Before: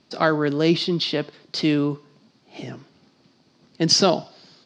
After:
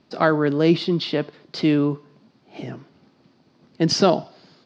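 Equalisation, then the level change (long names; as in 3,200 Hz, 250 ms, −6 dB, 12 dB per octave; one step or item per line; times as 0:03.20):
high-shelf EQ 3,800 Hz −12 dB
+2.0 dB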